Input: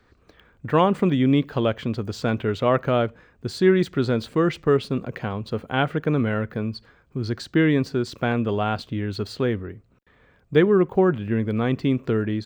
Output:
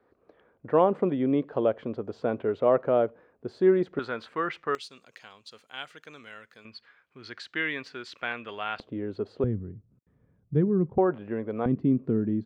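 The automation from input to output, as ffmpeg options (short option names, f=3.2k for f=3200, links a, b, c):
-af "asetnsamples=n=441:p=0,asendcmd='3.99 bandpass f 1400;4.75 bandpass f 6400;6.65 bandpass f 2200;8.8 bandpass f 480;9.44 bandpass f 140;10.98 bandpass f 660;11.66 bandpass f 220',bandpass=f=540:t=q:w=1.2:csg=0"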